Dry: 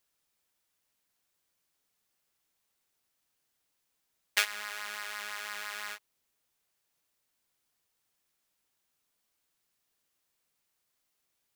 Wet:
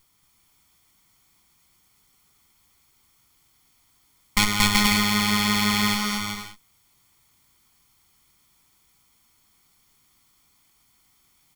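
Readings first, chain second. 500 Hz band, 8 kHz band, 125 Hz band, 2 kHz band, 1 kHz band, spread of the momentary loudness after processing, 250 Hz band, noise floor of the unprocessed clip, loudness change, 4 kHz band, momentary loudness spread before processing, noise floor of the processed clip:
+14.0 dB, +14.5 dB, no reading, +11.0 dB, +16.5 dB, 10 LU, +42.0 dB, -80 dBFS, +14.0 dB, +16.0 dB, 10 LU, -64 dBFS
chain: comb filter that takes the minimum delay 0.9 ms; bass shelf 190 Hz +8.5 dB; bouncing-ball echo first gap 230 ms, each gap 0.65×, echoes 5; loudness maximiser +16.5 dB; trim -1 dB

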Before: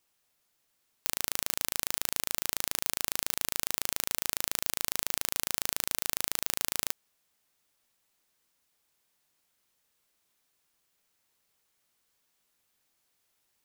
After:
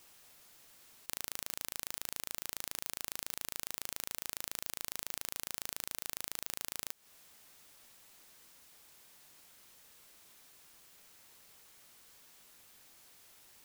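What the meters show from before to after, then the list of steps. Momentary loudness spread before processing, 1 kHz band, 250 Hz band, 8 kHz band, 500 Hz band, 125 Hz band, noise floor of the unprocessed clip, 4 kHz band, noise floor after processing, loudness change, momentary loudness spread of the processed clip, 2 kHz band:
1 LU, -9.0 dB, -9.0 dB, -9.0 dB, -9.0 dB, -9.0 dB, -76 dBFS, -9.0 dB, -73 dBFS, -9.0 dB, 18 LU, -9.0 dB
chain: compression 10:1, threshold -36 dBFS, peak gain reduction 13 dB; integer overflow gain 23.5 dB; trim +15 dB

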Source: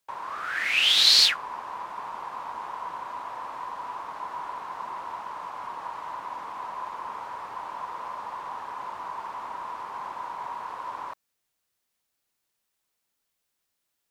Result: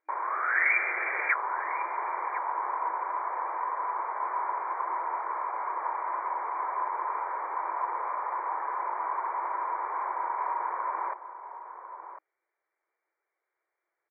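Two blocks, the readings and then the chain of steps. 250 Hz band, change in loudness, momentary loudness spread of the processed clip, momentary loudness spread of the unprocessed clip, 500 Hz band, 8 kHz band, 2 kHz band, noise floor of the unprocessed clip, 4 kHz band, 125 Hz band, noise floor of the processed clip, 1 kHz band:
-1.0 dB, -3.0 dB, 6 LU, 16 LU, +4.5 dB, under -40 dB, +2.0 dB, -80 dBFS, under -40 dB, no reading, under -85 dBFS, +4.5 dB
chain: echo from a far wall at 180 m, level -10 dB; wow and flutter 24 cents; FFT band-pass 320–2400 Hz; trim +4 dB

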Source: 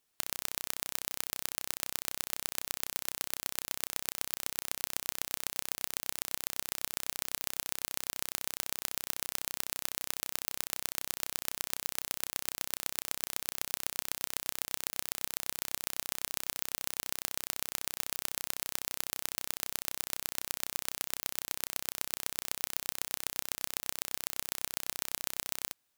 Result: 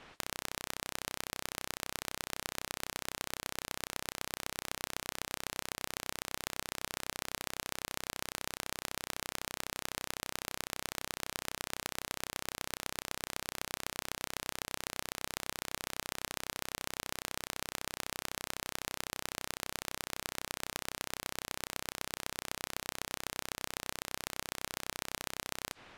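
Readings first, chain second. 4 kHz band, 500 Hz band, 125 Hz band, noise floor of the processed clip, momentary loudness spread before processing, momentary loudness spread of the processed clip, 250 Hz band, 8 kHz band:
-1.0 dB, +3.5 dB, +3.5 dB, -82 dBFS, 1 LU, 1 LU, +3.5 dB, -4.5 dB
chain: low-pass 1.3 kHz 12 dB/octave; spectrum-flattening compressor 4:1; trim +11.5 dB

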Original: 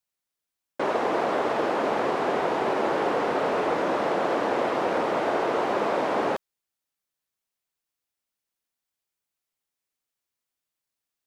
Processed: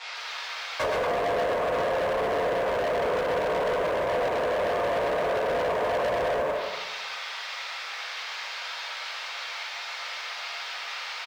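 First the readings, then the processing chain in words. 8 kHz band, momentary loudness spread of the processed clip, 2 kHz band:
no reading, 7 LU, +2.5 dB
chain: comb 1.9 ms, depth 72%; band noise 440–4700 Hz -49 dBFS; peaking EQ 970 Hz +8.5 dB 2.3 oct; simulated room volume 82 m³, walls mixed, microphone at 1.6 m; low-pass that closes with the level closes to 490 Hz, closed at -8.5 dBFS; tilt shelf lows -8.5 dB, about 740 Hz; band-stop 3 kHz, Q 25; on a send: loudspeakers at several distances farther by 43 m -4 dB, 80 m -8 dB; on the sum: overload inside the chain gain 19 dB; frequency shift +27 Hz; bit-crushed delay 145 ms, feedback 55%, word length 7-bit, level -14 dB; trim -5.5 dB

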